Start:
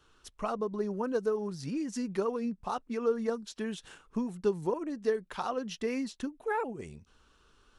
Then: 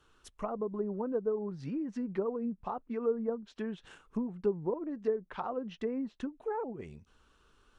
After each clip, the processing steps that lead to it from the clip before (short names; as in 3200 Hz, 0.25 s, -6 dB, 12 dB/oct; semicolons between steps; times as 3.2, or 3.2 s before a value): treble ducked by the level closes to 830 Hz, closed at -29 dBFS; bell 5000 Hz -4 dB 0.92 oct; gain -1.5 dB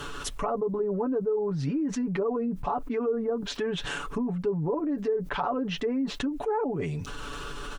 comb 7 ms, depth 74%; fast leveller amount 70%; gain -2.5 dB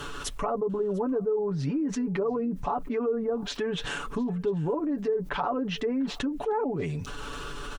echo 0.697 s -24 dB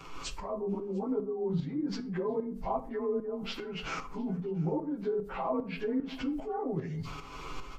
inharmonic rescaling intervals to 92%; tremolo saw up 2.5 Hz, depth 70%; shoebox room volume 460 m³, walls furnished, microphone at 0.68 m